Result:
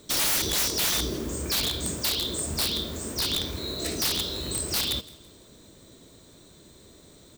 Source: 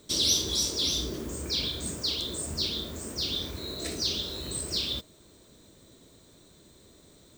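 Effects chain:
wrap-around overflow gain 23 dB
on a send: repeating echo 165 ms, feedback 39%, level −21 dB
on the sum: level +4 dB

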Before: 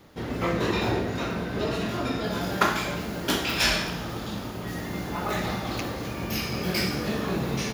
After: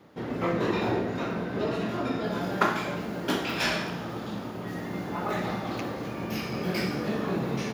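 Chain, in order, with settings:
high-pass filter 130 Hz 12 dB per octave
high-shelf EQ 2,900 Hz −10.5 dB

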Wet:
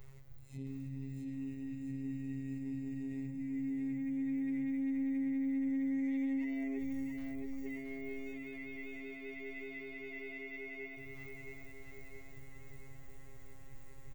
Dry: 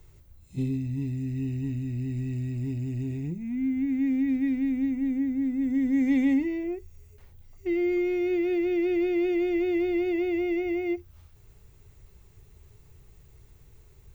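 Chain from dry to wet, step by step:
thirty-one-band graphic EQ 125 Hz −5 dB, 315 Hz −11 dB, 2,000 Hz +6 dB
downward compressor, threshold −34 dBFS, peak gain reduction 10.5 dB
brickwall limiter −40.5 dBFS, peak gain reduction 13 dB
phases set to zero 135 Hz
on a send: repeating echo 671 ms, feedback 57%, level −4 dB
on the sum: one half of a high-frequency compander decoder only
level +4.5 dB

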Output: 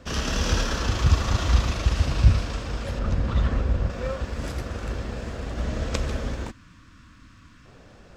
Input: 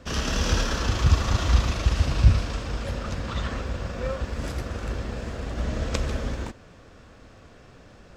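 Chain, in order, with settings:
0:02.99–0:03.90: spectral tilt −2 dB per octave
0:06.51–0:07.66: gain on a spectral selection 340–940 Hz −18 dB

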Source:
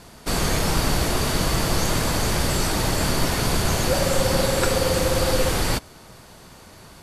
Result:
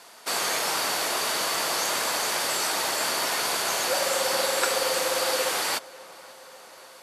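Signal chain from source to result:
high-pass filter 640 Hz 12 dB per octave
on a send: feedback echo with a low-pass in the loop 539 ms, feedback 70%, low-pass 2,500 Hz, level −21.5 dB

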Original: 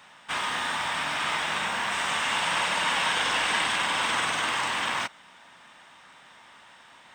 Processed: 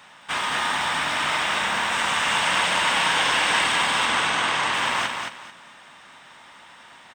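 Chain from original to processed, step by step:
0:04.05–0:04.74: high-shelf EQ 9,000 Hz −9 dB
on a send: repeating echo 220 ms, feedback 25%, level −5 dB
on the sum: level +3.5 dB

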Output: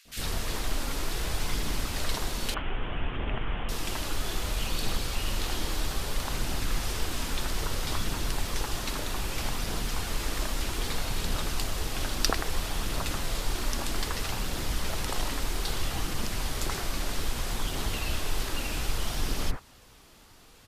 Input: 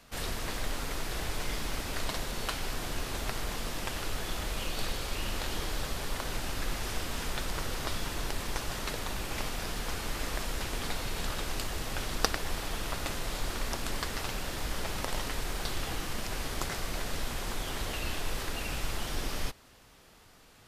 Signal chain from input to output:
0:02.54–0:03.69: Butterworth low-pass 3,300 Hz 96 dB per octave
phase shifter 0.62 Hz, delay 3.7 ms, feedback 22%
three-band delay without the direct sound highs, lows, mids 50/80 ms, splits 580/1,800 Hz
level +3.5 dB

